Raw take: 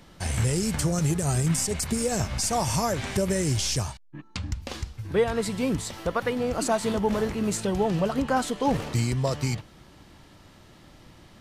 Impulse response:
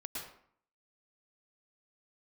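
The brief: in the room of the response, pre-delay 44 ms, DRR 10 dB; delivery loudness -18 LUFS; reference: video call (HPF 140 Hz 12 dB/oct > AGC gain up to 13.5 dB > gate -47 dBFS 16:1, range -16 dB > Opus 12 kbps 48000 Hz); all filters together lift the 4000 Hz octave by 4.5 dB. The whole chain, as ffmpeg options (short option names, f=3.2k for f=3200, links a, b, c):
-filter_complex "[0:a]equalizer=f=4k:t=o:g=6,asplit=2[a][b];[1:a]atrim=start_sample=2205,adelay=44[c];[b][c]afir=irnorm=-1:irlink=0,volume=-10dB[d];[a][d]amix=inputs=2:normalize=0,highpass=140,dynaudnorm=m=13.5dB,agate=range=-16dB:threshold=-47dB:ratio=16,volume=9.5dB" -ar 48000 -c:a libopus -b:a 12k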